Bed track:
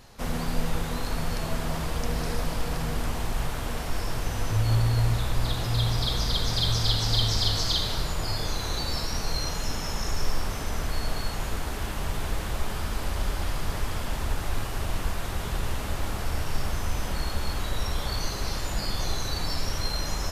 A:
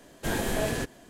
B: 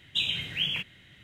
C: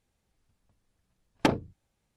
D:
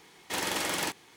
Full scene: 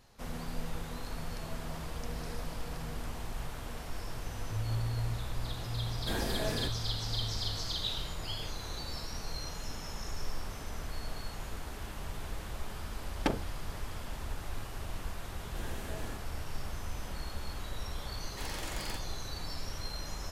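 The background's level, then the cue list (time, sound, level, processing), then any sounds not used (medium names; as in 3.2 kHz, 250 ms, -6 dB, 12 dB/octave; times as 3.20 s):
bed track -10.5 dB
5.83 s: add A -6.5 dB + peaking EQ 5.1 kHz -8 dB
7.68 s: add B -17 dB + resonant high shelf 3.2 kHz +6.5 dB, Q 3
11.81 s: add C -7 dB
15.32 s: add A -17 dB
18.07 s: add D -11.5 dB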